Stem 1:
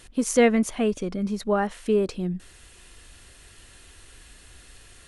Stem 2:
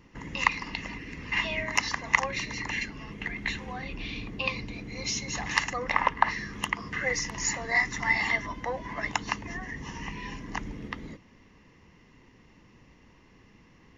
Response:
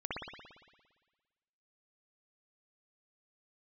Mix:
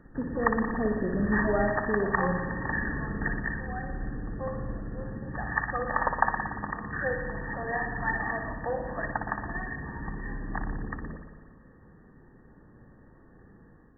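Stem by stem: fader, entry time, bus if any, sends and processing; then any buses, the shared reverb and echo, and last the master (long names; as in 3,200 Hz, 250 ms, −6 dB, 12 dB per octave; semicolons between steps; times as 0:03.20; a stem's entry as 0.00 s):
−8.5 dB, 0.00 s, send −4 dB, brickwall limiter −18 dBFS, peak gain reduction 10 dB
0:03.24 −1 dB → 0:03.54 −7.5 dB, 0.00 s, send −5 dB, no processing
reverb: on, RT60 1.4 s, pre-delay 57 ms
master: notch filter 1,000 Hz, Q 5.6; automatic gain control gain up to 7 dB; linear-phase brick-wall low-pass 1,900 Hz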